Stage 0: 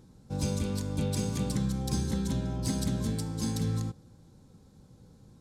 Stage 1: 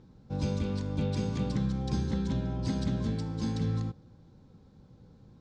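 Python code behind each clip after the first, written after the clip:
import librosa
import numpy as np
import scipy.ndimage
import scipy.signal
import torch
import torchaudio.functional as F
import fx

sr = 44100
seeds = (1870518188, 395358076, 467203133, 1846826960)

y = scipy.signal.sosfilt(scipy.signal.bessel(4, 3800.0, 'lowpass', norm='mag', fs=sr, output='sos'), x)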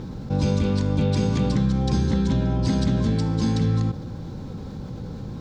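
y = fx.env_flatten(x, sr, amount_pct=50)
y = F.gain(torch.from_numpy(y), 7.5).numpy()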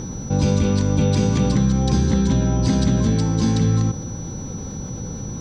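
y = x + 10.0 ** (-41.0 / 20.0) * np.sin(2.0 * np.pi * 5900.0 * np.arange(len(x)) / sr)
y = F.gain(torch.from_numpy(y), 3.5).numpy()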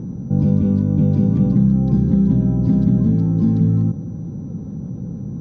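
y = fx.bandpass_q(x, sr, hz=180.0, q=1.3)
y = F.gain(torch.from_numpy(y), 5.0).numpy()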